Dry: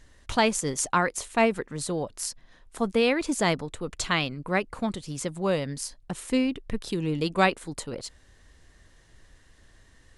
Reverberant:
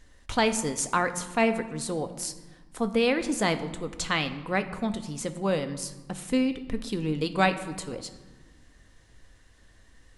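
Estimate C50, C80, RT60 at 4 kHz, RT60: 12.5 dB, 14.0 dB, 0.85 s, 1.3 s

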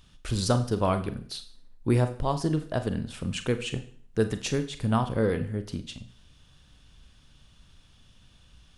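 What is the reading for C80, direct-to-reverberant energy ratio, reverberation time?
16.0 dB, 9.0 dB, 0.50 s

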